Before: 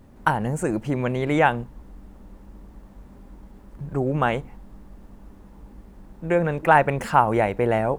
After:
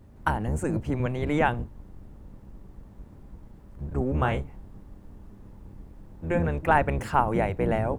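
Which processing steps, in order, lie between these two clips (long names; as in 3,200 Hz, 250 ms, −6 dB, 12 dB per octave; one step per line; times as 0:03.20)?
sub-octave generator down 1 octave, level +3 dB
0:04.11–0:06.48: double-tracking delay 30 ms −8.5 dB
level −5.5 dB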